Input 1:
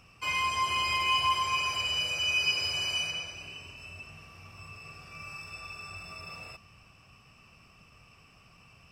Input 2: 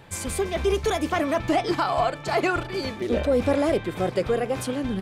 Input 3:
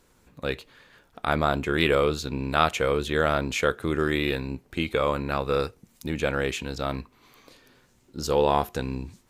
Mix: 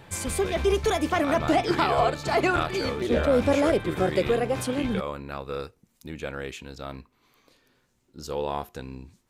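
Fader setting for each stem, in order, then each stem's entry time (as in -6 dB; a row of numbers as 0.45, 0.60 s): off, 0.0 dB, -8.0 dB; off, 0.00 s, 0.00 s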